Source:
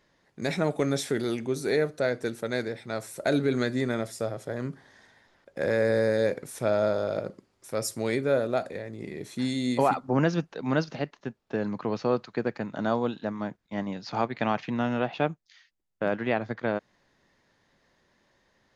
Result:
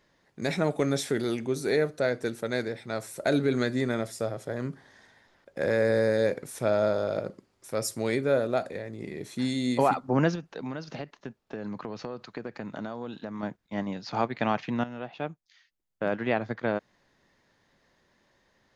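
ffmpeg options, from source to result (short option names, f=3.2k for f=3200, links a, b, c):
-filter_complex "[0:a]asettb=1/sr,asplit=3[a][b][c];[a]atrim=end=10.354[d];[b]atrim=start=10.35:end=13.43,asetpts=PTS-STARTPTS,afade=t=in:d=0.004:c=qsin,afade=t=out:st=3.076:d=0.004:c=qsin,acompressor=threshold=-31dB:ratio=10:attack=3.2:release=140:knee=1:detection=peak[e];[c]atrim=start=13.426[f];[d][e]acrossfade=d=0.004:c1=hsin:c2=qsin[g];[g][f]acrossfade=d=0.004:c1=qsin:c2=hsin,asplit=2[h][i];[h]atrim=end=14.84,asetpts=PTS-STARTPTS,afade=t=out:st=14.836:d=0.004:c=hsin:silence=0.223872[j];[i]atrim=start=14.84,asetpts=PTS-STARTPTS,afade=t=in:d=1.48:silence=0.223872[k];[j][k]concat=n=2:v=0:a=1"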